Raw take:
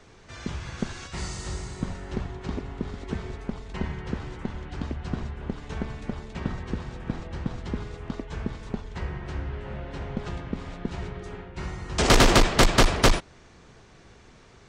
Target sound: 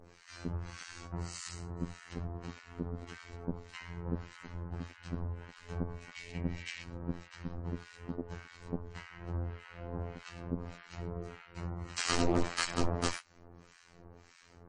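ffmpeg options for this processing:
-filter_complex "[0:a]asettb=1/sr,asplit=3[s0][s1][s2];[s0]atrim=end=6.164[s3];[s1]atrim=start=6.16:end=6.83,asetpts=PTS-STARTPTS,afade=t=in:d=0.004:c=qsin,afade=t=out:st=0.666:d=0.004:c=qsin,highshelf=f=1700:t=q:w=3:g=8.5[s4];[s2]atrim=start=6.826[s5];[s3][s4]acrossfade=d=0.004:c1=hsin:c2=qsin[s6];[s6][s5]acrossfade=d=0.004:c1=qsin:c2=hsin,bandreject=f=3500:w=7.4,adynamicequalizer=threshold=0.01:dfrequency=3100:dqfactor=1.1:tfrequency=3100:tqfactor=1.1:attack=5:release=100:ratio=0.375:range=2:mode=cutabove:tftype=bell,asplit=2[s7][s8];[s8]acompressor=threshold=0.0178:ratio=8,volume=1[s9];[s7][s9]amix=inputs=2:normalize=0,afftfilt=real='hypot(re,im)*cos(PI*b)':imag='0':win_size=2048:overlap=0.75,acrossover=split=1200[s10][s11];[s10]aeval=exprs='val(0)*(1-1/2+1/2*cos(2*PI*1.7*n/s))':c=same[s12];[s11]aeval=exprs='val(0)*(1-1/2-1/2*cos(2*PI*1.7*n/s))':c=same[s13];[s12][s13]amix=inputs=2:normalize=0,asoftclip=type=hard:threshold=0.211,volume=0.708" -ar 22050 -c:a libmp3lame -b:a 40k

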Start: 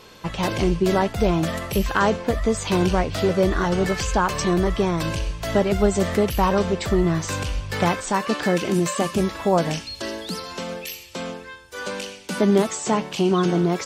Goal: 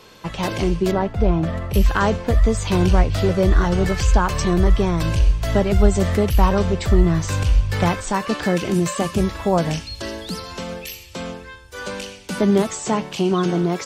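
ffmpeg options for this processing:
-filter_complex "[0:a]asettb=1/sr,asplit=3[s0][s1][s2];[s0]atrim=end=0.914[s3];[s1]atrim=start=0.91:end=1.74,asetpts=PTS-STARTPTS,afade=t=in:d=0.004:c=qsin,afade=t=out:st=0.826:d=0.004:c=qsin,lowpass=f=1300:p=1[s4];[s2]atrim=start=1.736[s5];[s3][s4]acrossfade=d=0.004:c1=hsin:c2=qsin[s6];[s6][s5]acrossfade=d=0.004:c1=qsin:c2=hsin,acrossover=split=110[s7][s8];[s7]dynaudnorm=f=280:g=9:m=3.98[s9];[s9][s8]amix=inputs=2:normalize=0"

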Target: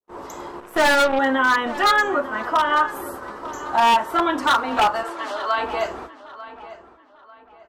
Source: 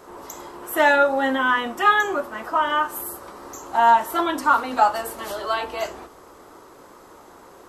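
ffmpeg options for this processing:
-filter_complex "[0:a]aemphasis=mode=reproduction:type=50fm,agate=range=0.00355:threshold=0.01:ratio=16:detection=peak,adynamicequalizer=threshold=0.0355:dfrequency=1400:dqfactor=1.2:tfrequency=1400:tqfactor=1.2:attack=5:release=100:ratio=0.375:range=1.5:mode=boostabove:tftype=bell,asplit=2[s0][s1];[s1]acompressor=threshold=0.0562:ratio=6,volume=0.891[s2];[s0][s2]amix=inputs=2:normalize=0,aeval=exprs='0.355*(abs(mod(val(0)/0.355+3,4)-2)-1)':c=same,asettb=1/sr,asplit=3[s3][s4][s5];[s3]atrim=end=0.604[s6];[s4]atrim=start=0.6:end=1.19,asetpts=PTS-STARTPTS,afade=t=in:d=0.004:c=qsin,afade=t=out:st=0.586:d=0.004:c=qsin,aeval=exprs='0.376*(cos(1*acos(clip(val(0)/0.376,-1,1)))-cos(1*PI/2))+0.0266*(cos(6*acos(clip(val(0)/0.376,-1,1)))-cos(6*PI/2))+0.0376*(cos(7*acos(clip(val(0)/0.376,-1,1)))-cos(7*PI/2))':c=same[s7];[s5]atrim=start=1.186[s8];[s6][s7]acrossfade=d=0.004:c1=hsin:c2=qsin[s9];[s9][s8]acrossfade=d=0.004:c1=qsin:c2=hsin,asettb=1/sr,asplit=3[s10][s11][s12];[s10]atrim=end=5.034[s13];[s11]atrim=start=5.03:end=5.58,asetpts=PTS-STARTPTS,afade=t=in:d=0.004:c=qsin,afade=t=out:st=0.546:d=0.004:c=qsin,highpass=620,lowpass=7700[s14];[s12]atrim=start=5.576[s15];[s13][s14]acrossfade=d=0.004:c1=hsin:c2=qsin[s16];[s16][s15]acrossfade=d=0.004:c1=qsin:c2=hsin,asplit=2[s17][s18];[s18]adelay=895,lowpass=f=3400:p=1,volume=0.168,asplit=2[s19][s20];[s20]adelay=895,lowpass=f=3400:p=1,volume=0.35,asplit=2[s21][s22];[s22]adelay=895,lowpass=f=3400:p=1,volume=0.35[s23];[s17][s19][s21][s23]amix=inputs=4:normalize=0,volume=0.841"

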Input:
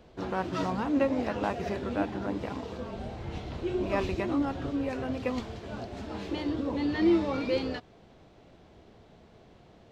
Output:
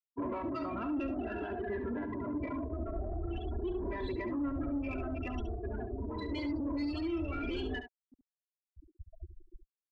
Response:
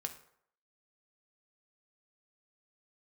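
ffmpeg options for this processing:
-filter_complex "[0:a]afftfilt=real='re*pow(10,11/40*sin(2*PI*(1*log(max(b,1)*sr/1024/100)/log(2)-(0.49)*(pts-256)/sr)))':imag='im*pow(10,11/40*sin(2*PI*(1*log(max(b,1)*sr/1024/100)/log(2)-(0.49)*(pts-256)/sr)))':win_size=1024:overlap=0.75,aecho=1:1:3:0.83,afftfilt=real='re*gte(hypot(re,im),0.0316)':imag='im*gte(hypot(re,im),0.0316)':win_size=1024:overlap=0.75,acrossover=split=180|1400[s0][s1][s2];[s0]acompressor=threshold=0.00447:ratio=4[s3];[s1]acompressor=threshold=0.0501:ratio=4[s4];[s2]acompressor=threshold=0.01:ratio=4[s5];[s3][s4][s5]amix=inputs=3:normalize=0,asubboost=boost=6:cutoff=72,alimiter=level_in=1.78:limit=0.0631:level=0:latency=1:release=28,volume=0.562,adynamicequalizer=threshold=0.00251:dfrequency=790:dqfactor=1.2:tfrequency=790:tqfactor=1.2:attack=5:release=100:ratio=0.375:range=4:mode=cutabove:tftype=bell,asoftclip=type=tanh:threshold=0.0282,areverse,acompressor=mode=upward:threshold=0.00178:ratio=2.5,areverse,aecho=1:1:70:0.335,volume=1.33"

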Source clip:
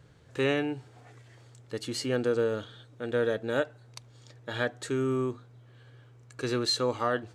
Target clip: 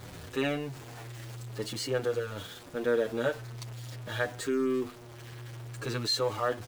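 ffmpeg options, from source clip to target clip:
-filter_complex "[0:a]aeval=exprs='val(0)+0.5*0.015*sgn(val(0))':c=same,atempo=1.1,asplit=2[s0][s1];[s1]adelay=7.7,afreqshift=-0.46[s2];[s0][s2]amix=inputs=2:normalize=1"

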